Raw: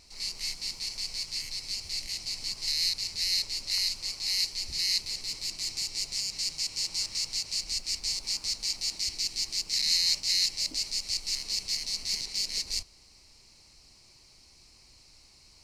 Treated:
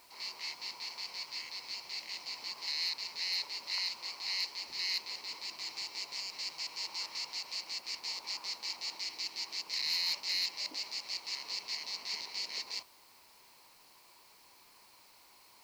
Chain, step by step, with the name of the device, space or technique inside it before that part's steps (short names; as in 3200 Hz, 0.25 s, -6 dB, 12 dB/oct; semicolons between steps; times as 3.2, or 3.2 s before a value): drive-through speaker (BPF 390–3200 Hz; bell 980 Hz +11 dB 0.48 oct; hard clip -26.5 dBFS, distortion -24 dB; white noise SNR 24 dB)